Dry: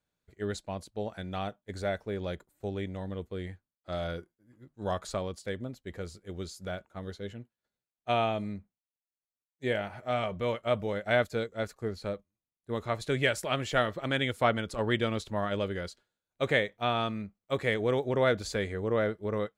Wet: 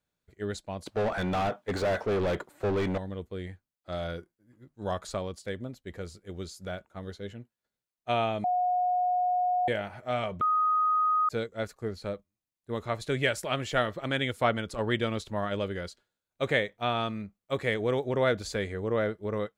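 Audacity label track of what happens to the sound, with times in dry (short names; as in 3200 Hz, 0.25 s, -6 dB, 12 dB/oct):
0.860000	2.980000	overdrive pedal drive 32 dB, tone 1300 Hz, clips at -19.5 dBFS
8.440000	9.680000	bleep 724 Hz -23.5 dBFS
10.410000	11.290000	bleep 1250 Hz -22 dBFS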